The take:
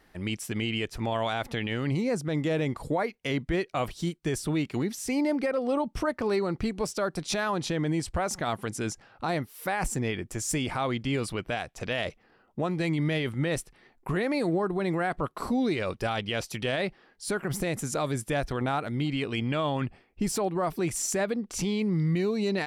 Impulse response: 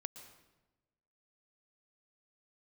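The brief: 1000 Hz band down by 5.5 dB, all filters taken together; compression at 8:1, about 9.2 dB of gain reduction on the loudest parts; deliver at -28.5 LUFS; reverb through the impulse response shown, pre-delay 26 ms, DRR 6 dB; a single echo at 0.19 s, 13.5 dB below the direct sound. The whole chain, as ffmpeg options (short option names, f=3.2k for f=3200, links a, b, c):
-filter_complex "[0:a]equalizer=f=1k:t=o:g=-8,acompressor=threshold=-33dB:ratio=8,aecho=1:1:190:0.211,asplit=2[a][b];[1:a]atrim=start_sample=2205,adelay=26[c];[b][c]afir=irnorm=-1:irlink=0,volume=-3dB[d];[a][d]amix=inputs=2:normalize=0,volume=8dB"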